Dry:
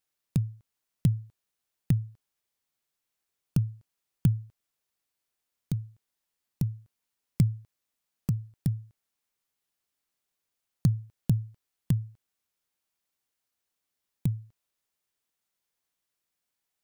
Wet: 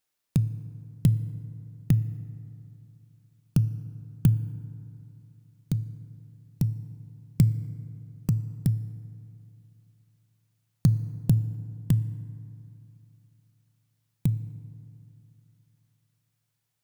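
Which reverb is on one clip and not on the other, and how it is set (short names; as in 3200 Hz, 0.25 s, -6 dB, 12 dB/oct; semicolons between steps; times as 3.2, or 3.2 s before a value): FDN reverb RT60 2.9 s, high-frequency decay 0.4×, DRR 13.5 dB; gain +3 dB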